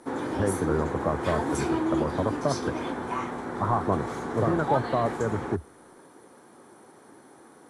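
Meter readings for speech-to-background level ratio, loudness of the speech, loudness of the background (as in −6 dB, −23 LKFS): 1.5 dB, −29.5 LKFS, −31.0 LKFS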